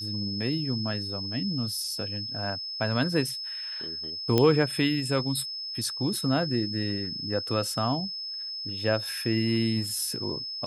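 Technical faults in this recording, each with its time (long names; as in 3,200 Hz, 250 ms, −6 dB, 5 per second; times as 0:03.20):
whistle 5,200 Hz −33 dBFS
0:04.38: click −9 dBFS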